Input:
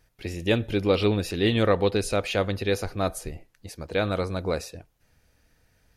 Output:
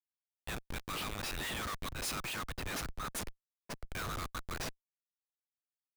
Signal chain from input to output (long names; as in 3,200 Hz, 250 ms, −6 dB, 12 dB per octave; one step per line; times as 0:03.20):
fade in at the beginning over 1.18 s
Chebyshev high-pass filter 1,100 Hz, order 8
comparator with hysteresis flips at −38.5 dBFS
0:01.91–0:03.85: multiband upward and downward expander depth 100%